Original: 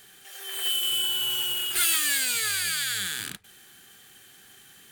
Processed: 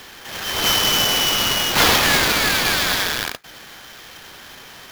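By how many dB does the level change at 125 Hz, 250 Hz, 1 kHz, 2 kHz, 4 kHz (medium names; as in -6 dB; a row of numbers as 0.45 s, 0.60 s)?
+19.5 dB, +20.5 dB, +19.5 dB, +11.5 dB, +8.5 dB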